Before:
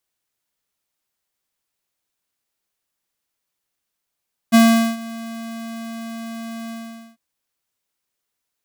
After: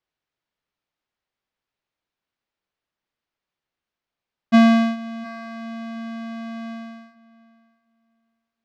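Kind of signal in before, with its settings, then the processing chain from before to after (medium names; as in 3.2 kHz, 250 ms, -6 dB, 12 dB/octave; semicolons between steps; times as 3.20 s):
ADSR square 228 Hz, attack 26 ms, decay 419 ms, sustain -21.5 dB, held 2.18 s, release 467 ms -9.5 dBFS
distance through air 200 m; filtered feedback delay 713 ms, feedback 17%, low-pass 3.6 kHz, level -20 dB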